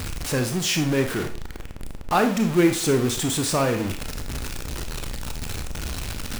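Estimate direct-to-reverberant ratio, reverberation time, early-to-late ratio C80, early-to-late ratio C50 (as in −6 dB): 5.5 dB, 0.40 s, 14.0 dB, 9.5 dB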